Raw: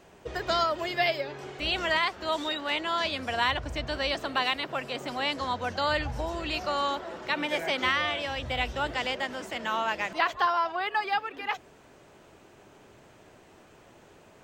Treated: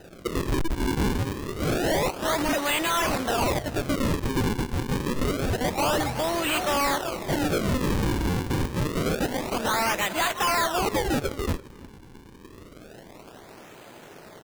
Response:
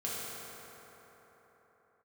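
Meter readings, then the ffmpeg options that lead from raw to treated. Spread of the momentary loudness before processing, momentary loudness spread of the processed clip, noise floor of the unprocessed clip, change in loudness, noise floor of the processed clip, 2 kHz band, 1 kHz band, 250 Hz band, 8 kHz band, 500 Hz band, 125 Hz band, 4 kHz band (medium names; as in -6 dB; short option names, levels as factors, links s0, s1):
7 LU, 6 LU, -55 dBFS, +3.0 dB, -47 dBFS, -0.5 dB, +1.0 dB, +11.0 dB, +15.5 dB, +4.5 dB, +13.5 dB, -1.0 dB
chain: -filter_complex "[0:a]highpass=130,aemphasis=mode=production:type=50fm,bandreject=f=1100:w=24,asplit=2[s0][s1];[s1]adynamicsmooth=sensitivity=6.5:basefreq=5800,volume=0.891[s2];[s0][s2]amix=inputs=2:normalize=0,acrusher=samples=39:mix=1:aa=0.000001:lfo=1:lforange=62.4:lforate=0.27,asoftclip=type=hard:threshold=0.0794,acrusher=bits=2:mode=log:mix=0:aa=0.000001,asplit=2[s3][s4];[s4]adelay=338.2,volume=0.0891,highshelf=f=4000:g=-7.61[s5];[s3][s5]amix=inputs=2:normalize=0,volume=1.41"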